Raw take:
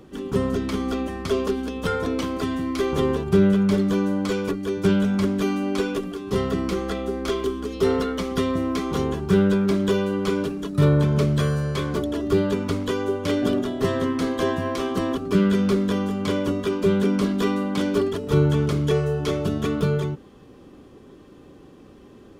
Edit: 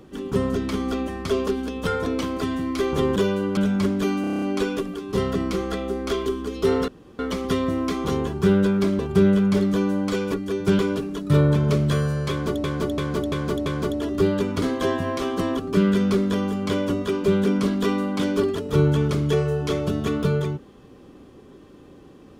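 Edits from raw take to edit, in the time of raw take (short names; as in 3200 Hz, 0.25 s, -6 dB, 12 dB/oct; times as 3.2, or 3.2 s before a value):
3.16–4.96 swap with 9.86–10.27
5.6 stutter 0.03 s, 8 plays
8.06 insert room tone 0.31 s
11.78–12.12 loop, 5 plays
12.74–14.2 cut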